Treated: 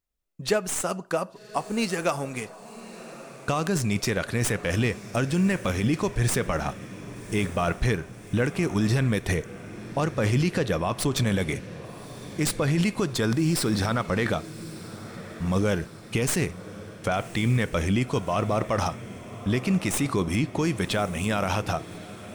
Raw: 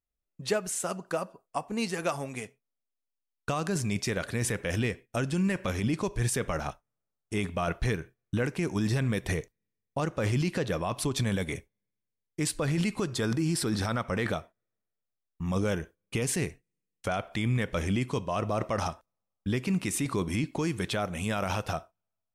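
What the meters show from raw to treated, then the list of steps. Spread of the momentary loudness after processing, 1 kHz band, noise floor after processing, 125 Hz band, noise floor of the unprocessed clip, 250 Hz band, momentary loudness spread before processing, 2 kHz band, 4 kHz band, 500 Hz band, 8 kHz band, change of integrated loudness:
15 LU, +4.5 dB, -45 dBFS, +4.5 dB, -85 dBFS, +4.5 dB, 8 LU, +4.5 dB, +4.5 dB, +4.5 dB, +3.5 dB, +4.5 dB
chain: tracing distortion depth 0.034 ms; on a send: diffused feedback echo 1.143 s, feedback 56%, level -15.5 dB; on the sum: gain +4.5 dB

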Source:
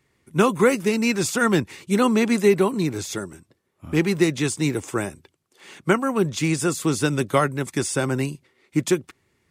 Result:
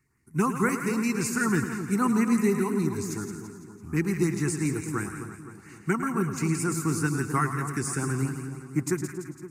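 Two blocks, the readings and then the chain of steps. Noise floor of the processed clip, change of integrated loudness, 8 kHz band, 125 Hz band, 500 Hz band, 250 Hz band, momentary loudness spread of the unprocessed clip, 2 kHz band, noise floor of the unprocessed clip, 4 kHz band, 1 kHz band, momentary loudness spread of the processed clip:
-50 dBFS, -5.5 dB, -4.0 dB, -2.0 dB, -9.5 dB, -4.0 dB, 10 LU, -5.5 dB, -69 dBFS, -13.0 dB, -4.5 dB, 13 LU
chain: fixed phaser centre 1400 Hz, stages 4; LFO notch saw up 5.8 Hz 610–5100 Hz; on a send: split-band echo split 1200 Hz, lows 0.259 s, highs 0.168 s, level -8.5 dB; on the sum: warbling echo 0.107 s, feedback 36%, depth 73 cents, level -11 dB; gain -2.5 dB

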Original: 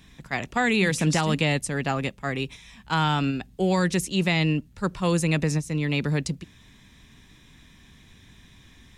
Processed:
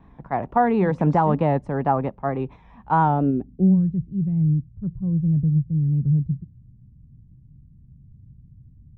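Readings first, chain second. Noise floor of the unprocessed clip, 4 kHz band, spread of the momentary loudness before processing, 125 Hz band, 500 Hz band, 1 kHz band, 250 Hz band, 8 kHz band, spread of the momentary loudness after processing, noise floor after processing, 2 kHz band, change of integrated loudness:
-54 dBFS, under -20 dB, 9 LU, +5.0 dB, +2.5 dB, +6.5 dB, +4.0 dB, under -35 dB, 10 LU, -51 dBFS, -9.5 dB, +3.0 dB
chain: low-pass sweep 890 Hz -> 130 Hz, 3.01–3.87; vibrato 4.4 Hz 50 cents; dynamic EQ 2800 Hz, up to -4 dB, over -47 dBFS, Q 2; gain +2.5 dB

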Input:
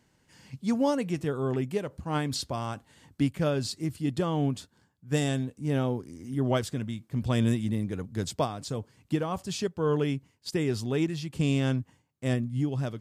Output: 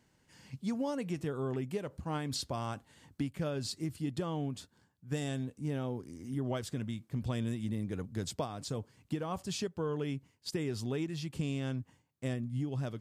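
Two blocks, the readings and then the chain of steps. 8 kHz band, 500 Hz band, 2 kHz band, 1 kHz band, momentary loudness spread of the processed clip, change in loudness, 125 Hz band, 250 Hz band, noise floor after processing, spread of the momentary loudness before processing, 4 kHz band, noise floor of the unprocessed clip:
-5.0 dB, -8.0 dB, -8.0 dB, -7.5 dB, 5 LU, -7.5 dB, -7.0 dB, -7.5 dB, -72 dBFS, 9 LU, -5.5 dB, -69 dBFS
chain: compressor, threshold -28 dBFS, peak gain reduction 8 dB; gain -3 dB

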